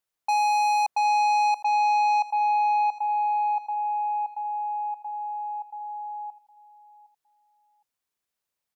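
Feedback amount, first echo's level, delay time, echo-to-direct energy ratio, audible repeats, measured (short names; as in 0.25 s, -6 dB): 28%, -19.0 dB, 0.762 s, -18.5 dB, 2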